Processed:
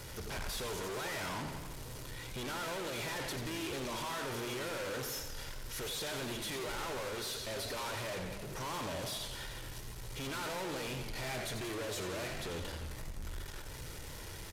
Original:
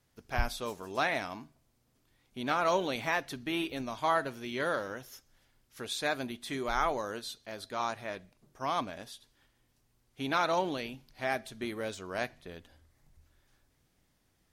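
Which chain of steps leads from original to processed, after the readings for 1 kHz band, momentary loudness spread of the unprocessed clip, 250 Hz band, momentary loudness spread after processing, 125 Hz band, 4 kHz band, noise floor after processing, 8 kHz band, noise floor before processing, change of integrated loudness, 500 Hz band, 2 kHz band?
-9.0 dB, 15 LU, -4.5 dB, 8 LU, +2.5 dB, +0.5 dB, -46 dBFS, +5.5 dB, -73 dBFS, -6.0 dB, -5.0 dB, -5.0 dB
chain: comb 2.1 ms, depth 55%; power-law curve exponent 0.5; soft clip -37.5 dBFS, distortion -4 dB; downsampling 32000 Hz; warbling echo 88 ms, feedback 68%, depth 146 cents, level -8 dB; gain -2 dB

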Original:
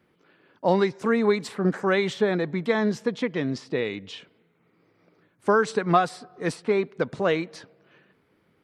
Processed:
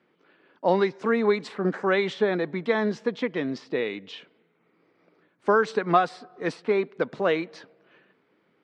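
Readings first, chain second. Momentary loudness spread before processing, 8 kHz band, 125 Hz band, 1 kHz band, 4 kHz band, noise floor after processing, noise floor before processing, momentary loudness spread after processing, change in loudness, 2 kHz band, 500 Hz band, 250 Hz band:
9 LU, n/a, -4.5 dB, 0.0 dB, -1.5 dB, -68 dBFS, -67 dBFS, 9 LU, -0.5 dB, 0.0 dB, 0.0 dB, -2.5 dB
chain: BPF 210–4500 Hz

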